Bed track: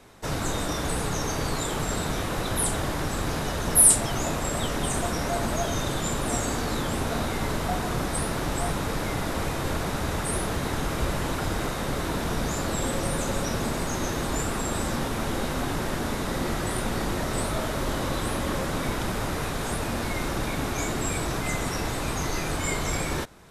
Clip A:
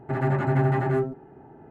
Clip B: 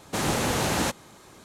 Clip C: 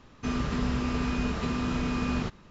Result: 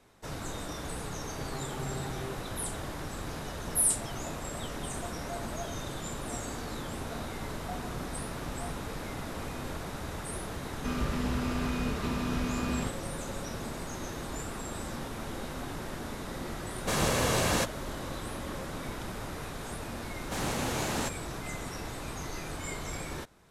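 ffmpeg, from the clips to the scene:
-filter_complex "[3:a]asplit=2[a][b];[2:a]asplit=2[c][d];[0:a]volume=-10dB[e];[c]aecho=1:1:1.8:0.36[f];[1:a]atrim=end=1.7,asetpts=PTS-STARTPTS,volume=-17dB,afade=t=in:d=0.004:c=hsin,afade=t=out:st=1.696:d=0.004:c=hsin,adelay=1300[g];[a]atrim=end=2.5,asetpts=PTS-STARTPTS,volume=-18dB,afade=t=in:d=0.004:c=hsin,afade=t=out:st=2.496:d=0.004:c=hsin,adelay=7480[h];[b]atrim=end=2.5,asetpts=PTS-STARTPTS,volume=-3.5dB,afade=t=in:d=0.004:c=hsin,afade=t=out:st=2.496:d=0.004:c=hsin,adelay=10610[i];[f]atrim=end=1.44,asetpts=PTS-STARTPTS,volume=-2.5dB,afade=t=in:d=0.004:c=hsin,afade=t=out:st=1.436:d=0.004:c=hsin,adelay=16740[j];[d]atrim=end=1.44,asetpts=PTS-STARTPTS,volume=-7.5dB,afade=t=in:d=0.004:c=hsin,afade=t=out:st=1.436:d=0.004:c=hsin,adelay=20180[k];[e][g][h][i][j][k]amix=inputs=6:normalize=0"

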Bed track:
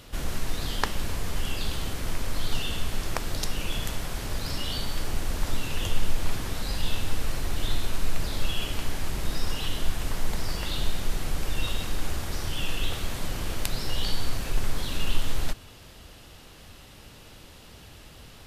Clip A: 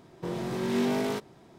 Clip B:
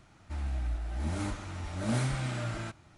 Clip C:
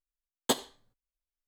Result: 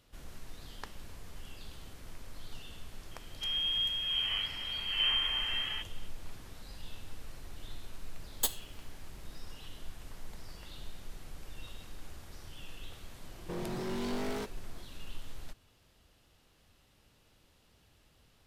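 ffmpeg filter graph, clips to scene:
-filter_complex "[0:a]volume=-18dB[a];[2:a]lowpass=f=2.8k:t=q:w=0.5098,lowpass=f=2.8k:t=q:w=0.6013,lowpass=f=2.8k:t=q:w=0.9,lowpass=f=2.8k:t=q:w=2.563,afreqshift=-3300[b];[3:a]aemphasis=mode=production:type=riaa[c];[1:a]asoftclip=type=hard:threshold=-30dB[d];[b]atrim=end=2.97,asetpts=PTS-STARTPTS,volume=-0.5dB,afade=t=in:d=0.004:c=hsin,afade=t=out:st=2.966:d=0.004:c=hsin,adelay=3110[e];[c]atrim=end=1.47,asetpts=PTS-STARTPTS,volume=-12dB,afade=t=in:d=0.004:c=hsin,afade=t=out:st=1.466:d=0.004:c=hsin,adelay=350154S[f];[d]atrim=end=1.58,asetpts=PTS-STARTPTS,volume=-4dB,afade=t=in:d=0.004:c=hsin,afade=t=out:st=1.576:d=0.004:c=hsin,adelay=13260[g];[a][e][f][g]amix=inputs=4:normalize=0"

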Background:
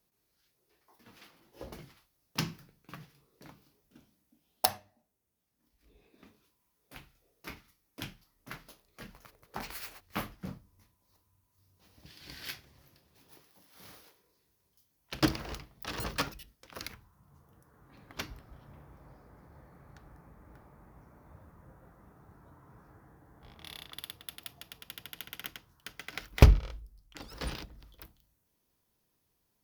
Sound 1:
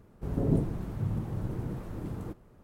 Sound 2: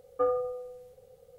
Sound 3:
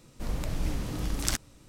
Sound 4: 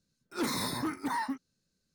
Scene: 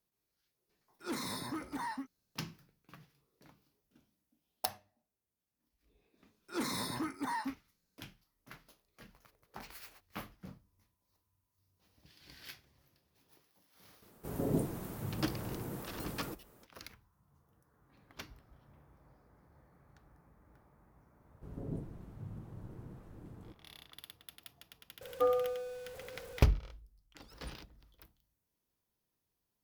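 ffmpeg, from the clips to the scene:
-filter_complex "[4:a]asplit=2[a][b];[1:a]asplit=2[c][d];[0:a]volume=-8.5dB[e];[c]aemphasis=mode=production:type=bsi[f];[2:a]aeval=exprs='val(0)+0.5*0.00668*sgn(val(0))':c=same[g];[a]atrim=end=1.94,asetpts=PTS-STARTPTS,volume=-7dB,afade=t=in:d=0.004:c=hsin,afade=t=out:st=1.936:d=0.004:c=hsin,adelay=690[h];[b]atrim=end=1.94,asetpts=PTS-STARTPTS,volume=-4.5dB,afade=t=in:d=0.004:c=hsin,afade=t=out:st=1.936:d=0.004:c=hsin,adelay=6170[i];[f]atrim=end=2.63,asetpts=PTS-STARTPTS,volume=-0.5dB,afade=t=in:d=0.004:c=hsin,afade=t=out:st=2.626:d=0.004:c=hsin,adelay=14020[j];[d]atrim=end=2.63,asetpts=PTS-STARTPTS,volume=-14.5dB,afade=t=in:d=0.004:c=hsin,afade=t=out:st=2.626:d=0.004:c=hsin,adelay=21200[k];[g]atrim=end=1.38,asetpts=PTS-STARTPTS,volume=-2.5dB,afade=t=in:d=0.004:c=hsin,afade=t=out:st=1.376:d=0.004:c=hsin,adelay=25010[l];[e][h][i][j][k][l]amix=inputs=6:normalize=0"

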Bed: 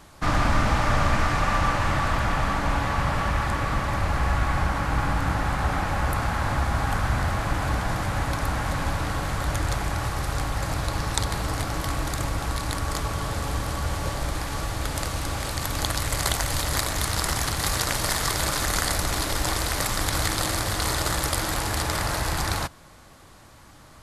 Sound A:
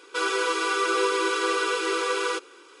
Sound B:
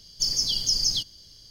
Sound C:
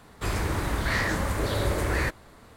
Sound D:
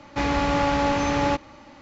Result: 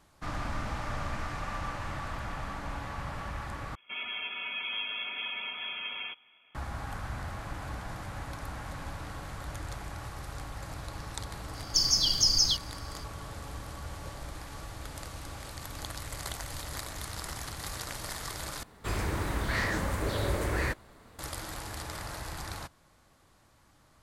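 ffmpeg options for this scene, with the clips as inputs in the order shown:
-filter_complex "[0:a]volume=-13.5dB[a];[1:a]lowpass=f=3.1k:t=q:w=0.5098,lowpass=f=3.1k:t=q:w=0.6013,lowpass=f=3.1k:t=q:w=0.9,lowpass=f=3.1k:t=q:w=2.563,afreqshift=-3700[b];[a]asplit=3[c][d][e];[c]atrim=end=3.754[f];[b]atrim=end=2.8,asetpts=PTS-STARTPTS,volume=-11.5dB[g];[d]atrim=start=6.546:end=18.634[h];[3:a]atrim=end=2.56,asetpts=PTS-STARTPTS,volume=-4dB[i];[e]atrim=start=21.186[j];[2:a]atrim=end=1.5,asetpts=PTS-STARTPTS,volume=-0.5dB,afade=t=in:d=0.004:c=hsin,afade=t=out:st=1.496:d=0.004:c=hsin,adelay=508914S[k];[f][g]acrossfade=d=0.004:c1=hsin:c2=hsin[l];[l][h]acrossfade=d=0.004:c1=hsin:c2=hsin[m];[m][i]acrossfade=d=0.004:c1=hsin:c2=hsin[n];[n][j]acrossfade=d=0.004:c1=hsin:c2=hsin[o];[o][k]amix=inputs=2:normalize=0"

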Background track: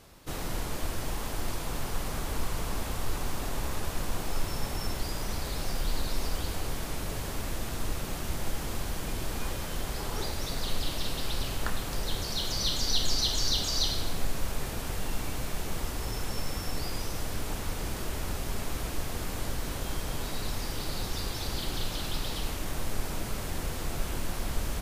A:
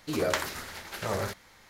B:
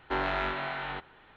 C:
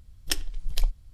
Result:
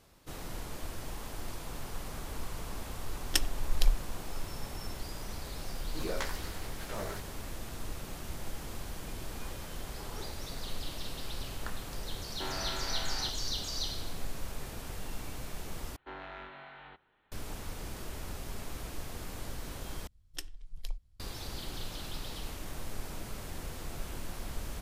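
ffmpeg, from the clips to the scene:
-filter_complex "[3:a]asplit=2[a][b];[2:a]asplit=2[c][d];[0:a]volume=-7.5dB[e];[1:a]asplit=2[f][g];[g]adelay=15,volume=-3.5dB[h];[f][h]amix=inputs=2:normalize=0[i];[c]asoftclip=type=tanh:threshold=-31.5dB[j];[e]asplit=3[k][l][m];[k]atrim=end=15.964[n];[d]atrim=end=1.36,asetpts=PTS-STARTPTS,volume=-15dB[o];[l]atrim=start=17.316:end=20.074[p];[b]atrim=end=1.13,asetpts=PTS-STARTPTS,volume=-14dB[q];[m]atrim=start=21.196[r];[a]atrim=end=1.13,asetpts=PTS-STARTPTS,volume=-1dB,afade=t=in:d=0.004:c=hsin,afade=t=out:st=1.126:d=0.004:c=hsin,adelay=3040[s];[i]atrim=end=1.69,asetpts=PTS-STARTPTS,volume=-10.5dB,afade=t=in:d=0.004:c=hsin,afade=t=out:st=1.686:d=0.004:c=hsin,adelay=5870[t];[j]atrim=end=1.36,asetpts=PTS-STARTPTS,volume=-5dB,afade=t=in:d=0.004:c=hsin,afade=t=out:st=1.356:d=0.004:c=hsin,adelay=12300[u];[n][o]acrossfade=d=0.004:c1=hsin:c2=hsin[v];[v][p]acrossfade=d=0.004:c1=hsin:c2=hsin[w];[w][q]acrossfade=d=0.004:c1=hsin:c2=hsin[x];[x][r]acrossfade=d=0.004:c1=hsin:c2=hsin[y];[y][s][t][u]amix=inputs=4:normalize=0"

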